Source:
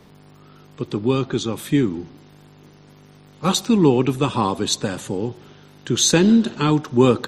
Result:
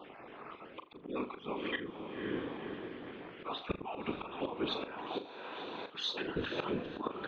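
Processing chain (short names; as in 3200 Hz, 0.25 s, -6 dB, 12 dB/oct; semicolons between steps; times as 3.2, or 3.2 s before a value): random spectral dropouts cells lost 32%; mistuned SSB -53 Hz 410–3100 Hz; whisperiser; diffused feedback echo 0.512 s, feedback 42%, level -12 dB; auto swell 0.683 s; 5.07–6.35 tilt +2.5 dB/oct; flutter echo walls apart 6.9 m, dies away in 0.25 s; gain +5 dB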